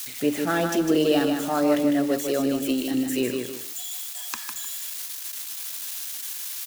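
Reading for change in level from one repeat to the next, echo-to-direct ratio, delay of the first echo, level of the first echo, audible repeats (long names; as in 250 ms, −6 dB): −10.0 dB, −5.0 dB, 153 ms, −5.5 dB, 2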